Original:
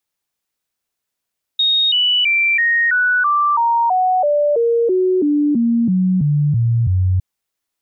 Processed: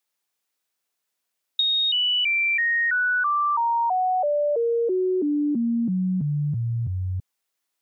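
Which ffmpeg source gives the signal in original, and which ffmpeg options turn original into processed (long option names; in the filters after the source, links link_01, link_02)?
-f lavfi -i "aevalsrc='0.251*clip(min(mod(t,0.33),0.33-mod(t,0.33))/0.005,0,1)*sin(2*PI*3730*pow(2,-floor(t/0.33)/3)*mod(t,0.33))':duration=5.61:sample_rate=44100"
-af "highpass=frequency=330:poles=1,acompressor=threshold=-21dB:ratio=6"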